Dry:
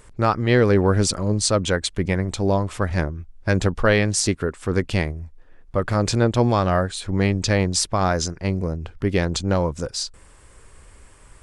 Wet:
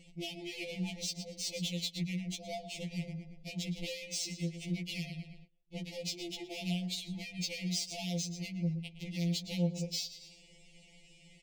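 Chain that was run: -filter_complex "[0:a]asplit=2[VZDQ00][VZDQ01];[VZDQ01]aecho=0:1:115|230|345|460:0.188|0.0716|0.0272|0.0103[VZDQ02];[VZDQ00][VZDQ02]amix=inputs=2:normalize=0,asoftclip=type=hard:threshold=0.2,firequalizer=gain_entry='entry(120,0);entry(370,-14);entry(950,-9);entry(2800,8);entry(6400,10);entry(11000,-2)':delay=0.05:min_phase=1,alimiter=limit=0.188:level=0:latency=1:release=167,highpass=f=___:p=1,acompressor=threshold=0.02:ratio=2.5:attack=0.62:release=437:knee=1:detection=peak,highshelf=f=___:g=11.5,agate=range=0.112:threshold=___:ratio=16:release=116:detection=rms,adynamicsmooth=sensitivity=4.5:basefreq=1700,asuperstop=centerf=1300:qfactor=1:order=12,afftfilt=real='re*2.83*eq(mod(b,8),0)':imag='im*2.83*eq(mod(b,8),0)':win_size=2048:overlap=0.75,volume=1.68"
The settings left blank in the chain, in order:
86, 8400, 0.00251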